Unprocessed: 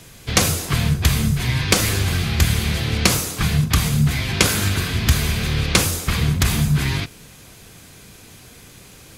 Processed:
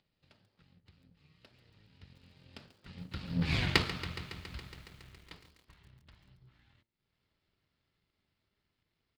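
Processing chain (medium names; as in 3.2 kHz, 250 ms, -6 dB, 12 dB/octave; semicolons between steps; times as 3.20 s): Doppler pass-by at 3.58 s, 55 m/s, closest 5.1 m; resampled via 11.025 kHz; upward compressor, threshold -44 dBFS; power-law waveshaper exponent 1.4; de-hum 114.7 Hz, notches 8; bit-crushed delay 139 ms, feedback 80%, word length 9-bit, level -14 dB; trim -1.5 dB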